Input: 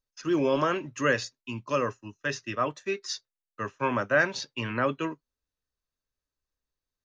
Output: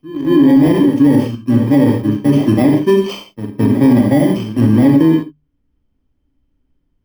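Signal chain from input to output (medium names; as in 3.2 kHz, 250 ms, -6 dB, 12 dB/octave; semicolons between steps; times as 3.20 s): bit-reversed sample order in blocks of 32 samples; hum notches 50/100/150/200 Hz; pre-echo 217 ms -13 dB; on a send at -3 dB: reverberation, pre-delay 38 ms; on the sum: level rider gain up to 15.5 dB; treble shelf 2.7 kHz -9.5 dB; in parallel at -10 dB: bit crusher 5-bit; on the sum: tone controls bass +11 dB, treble -13 dB; small resonant body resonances 280/3100 Hz, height 14 dB, ringing for 55 ms; loudness maximiser +2.5 dB; trim -1.5 dB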